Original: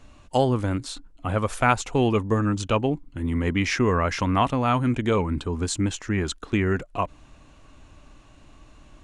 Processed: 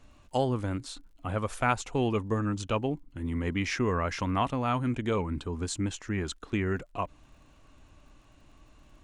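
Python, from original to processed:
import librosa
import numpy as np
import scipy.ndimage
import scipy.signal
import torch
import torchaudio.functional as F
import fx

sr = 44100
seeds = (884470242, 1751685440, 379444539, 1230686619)

y = fx.dmg_crackle(x, sr, seeds[0], per_s=50.0, level_db=-51.0)
y = y * librosa.db_to_amplitude(-6.5)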